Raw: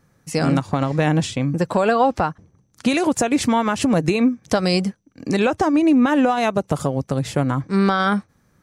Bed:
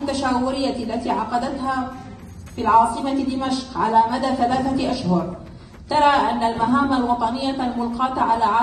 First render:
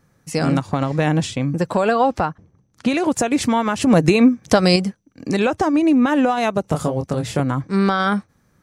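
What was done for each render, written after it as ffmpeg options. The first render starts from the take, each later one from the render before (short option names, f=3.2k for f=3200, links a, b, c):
-filter_complex "[0:a]asettb=1/sr,asplit=3[a][b][c];[a]atrim=end=2.254[d];[b]atrim=start=2.25:end=3.08,asetpts=PTS-STARTPTS,afade=t=in:d=0.004:c=qsin,afade=t=out:st=0.826:d=0.004:c=qsin,lowpass=f=3.7k:p=1[e];[c]atrim=start=3.076[f];[d][e]acrossfade=d=0.004:c1=hsin:c2=qsin[g];[g][f]acrossfade=d=0.004:c1=qsin:c2=hsin,asettb=1/sr,asplit=3[h][i][j];[h]atrim=end=6.624[k];[i]atrim=start=6.62:end=7.4,asetpts=PTS-STARTPTS,afade=t=in:d=0.004:c=qsin,afade=t=out:st=0.776:d=0.004:c=qsin,asplit=2[l][m];[m]adelay=25,volume=-5.5dB[n];[l][n]amix=inputs=2:normalize=0,atrim=end_sample=34398[o];[j]atrim=start=7.396[p];[k][o]acrossfade=d=0.004:c1=hsin:c2=qsin[q];[q][p]acrossfade=d=0.004:c1=qsin:c2=hsin,asplit=3[r][s][t];[r]atrim=end=3.872[u];[s]atrim=start=3.868:end=4.762,asetpts=PTS-STARTPTS,volume=4.5dB[v];[t]atrim=start=4.758[w];[u][v]acrossfade=d=0.004:c1=hsin:c2=hsin[x];[x][w]acrossfade=d=0.004:c1=hsin:c2=hsin"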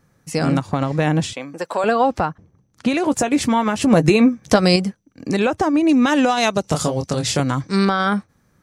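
-filter_complex "[0:a]asettb=1/sr,asplit=3[a][b][c];[a]atrim=end=1.334[d];[b]atrim=start=1.33:end=1.84,asetpts=PTS-STARTPTS,afade=t=in:d=0.004:c=qsin,afade=t=out:st=0.506:d=0.004:c=qsin,highpass=490[e];[c]atrim=start=1.836[f];[d][e]acrossfade=d=0.004:c1=hsin:c2=qsin[g];[g][f]acrossfade=d=0.004:c1=qsin:c2=hsin,asettb=1/sr,asplit=3[h][i][j];[h]atrim=end=3.034[k];[i]atrim=start=3.03:end=4.58,asetpts=PTS-STARTPTS,afade=t=in:d=0.004:c=qsin,afade=t=out:st=1.546:d=0.004:c=qsin,asplit=2[l][m];[m]adelay=14,volume=-11dB[n];[l][n]amix=inputs=2:normalize=0,atrim=end_sample=68355[o];[j]atrim=start=4.576[p];[k][o]acrossfade=d=0.004:c1=hsin:c2=qsin[q];[q][p]acrossfade=d=0.004:c1=qsin:c2=hsin,asettb=1/sr,asplit=3[r][s][t];[r]atrim=end=5.894[u];[s]atrim=start=5.89:end=7.85,asetpts=PTS-STARTPTS,afade=t=in:d=0.004:c=qsin,afade=t=out:st=1.956:d=0.004:c=qsin,equalizer=f=5.4k:t=o:w=1.9:g=12.5[v];[t]atrim=start=7.846[w];[u][v]acrossfade=d=0.004:c1=hsin:c2=qsin[x];[x][w]acrossfade=d=0.004:c1=qsin:c2=hsin"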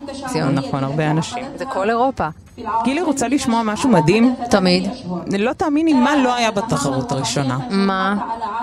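-filter_complex "[1:a]volume=-6dB[a];[0:a][a]amix=inputs=2:normalize=0"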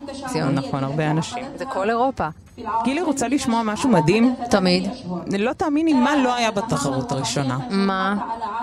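-af "volume=-3dB"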